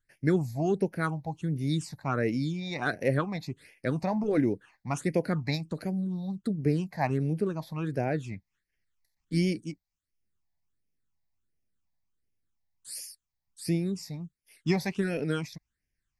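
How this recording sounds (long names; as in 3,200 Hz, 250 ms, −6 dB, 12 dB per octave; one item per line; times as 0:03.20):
phaser sweep stages 8, 1.4 Hz, lowest notch 380–1,200 Hz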